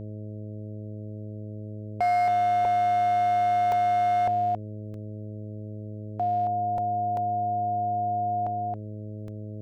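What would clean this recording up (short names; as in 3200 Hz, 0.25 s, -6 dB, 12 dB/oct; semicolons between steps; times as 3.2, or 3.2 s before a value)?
clip repair -20.5 dBFS; de-hum 106 Hz, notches 6; interpolate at 2.65/3.72/4.94/6.78/7.17/9.28, 2.1 ms; inverse comb 0.273 s -5 dB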